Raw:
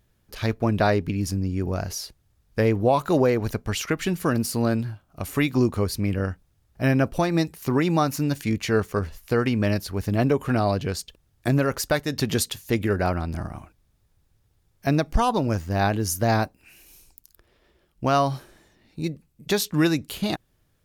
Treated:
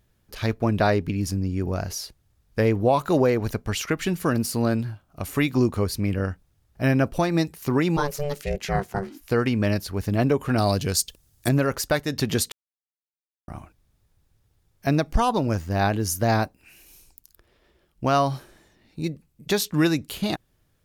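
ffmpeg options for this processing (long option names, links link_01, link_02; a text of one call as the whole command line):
ffmpeg -i in.wav -filter_complex "[0:a]asplit=3[link_01][link_02][link_03];[link_01]afade=type=out:start_time=7.96:duration=0.02[link_04];[link_02]aeval=exprs='val(0)*sin(2*PI*290*n/s)':channel_layout=same,afade=type=in:start_time=7.96:duration=0.02,afade=type=out:start_time=9.2:duration=0.02[link_05];[link_03]afade=type=in:start_time=9.2:duration=0.02[link_06];[link_04][link_05][link_06]amix=inputs=3:normalize=0,asettb=1/sr,asplit=3[link_07][link_08][link_09];[link_07]atrim=end=10.584[link_10];[link_08]atrim=start=10.58:end=11.49,asetpts=PTS-STARTPTS,afade=type=in:duration=0.004:curve=qsin,afade=type=out:start_time=0.906:duration=0.004:curve=qsin,bass=frequency=250:gain=2,treble=frequency=4000:gain=13[link_11];[link_09]atrim=start=11.486[link_12];[link_10][link_11]acrossfade=duration=0.004:curve1=hsin:curve2=qsin[link_13];[link_13][link_12]acrossfade=duration=0.004:curve1=qsin:curve2=hsin,asplit=3[link_14][link_15][link_16];[link_14]atrim=end=12.52,asetpts=PTS-STARTPTS,afade=type=out:start_time=12.516:duration=0.004:curve=hsin[link_17];[link_15]atrim=start=12.52:end=13.48,asetpts=PTS-STARTPTS,volume=0[link_18];[link_16]atrim=start=13.48,asetpts=PTS-STARTPTS,afade=type=in:duration=0.004:curve=hsin[link_19];[link_17][link_18][link_19]concat=n=3:v=0:a=1" out.wav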